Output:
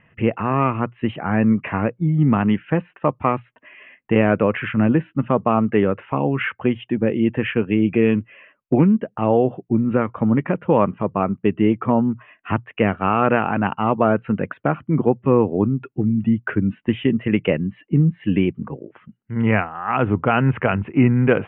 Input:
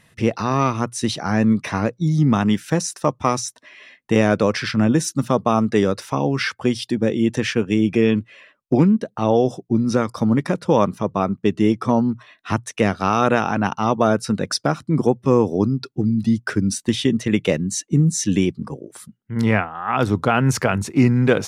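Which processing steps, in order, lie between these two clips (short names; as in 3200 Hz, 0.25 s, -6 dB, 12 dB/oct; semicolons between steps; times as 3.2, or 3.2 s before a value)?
steep low-pass 3000 Hz 96 dB/oct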